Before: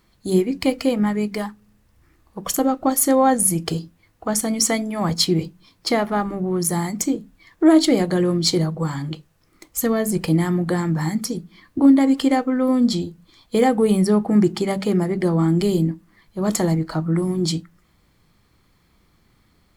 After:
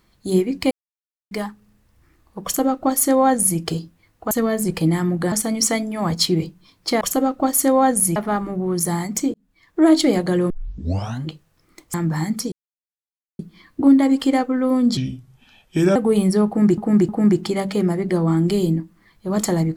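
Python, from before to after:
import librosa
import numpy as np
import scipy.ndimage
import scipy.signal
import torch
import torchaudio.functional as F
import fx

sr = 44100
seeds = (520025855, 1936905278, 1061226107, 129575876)

y = fx.edit(x, sr, fx.silence(start_s=0.71, length_s=0.6),
    fx.duplicate(start_s=2.44, length_s=1.15, to_s=6.0),
    fx.fade_in_span(start_s=7.18, length_s=0.56),
    fx.tape_start(start_s=8.34, length_s=0.75),
    fx.move(start_s=9.78, length_s=1.01, to_s=4.31),
    fx.insert_silence(at_s=11.37, length_s=0.87),
    fx.speed_span(start_s=12.95, length_s=0.74, speed=0.75),
    fx.repeat(start_s=14.2, length_s=0.31, count=3), tone=tone)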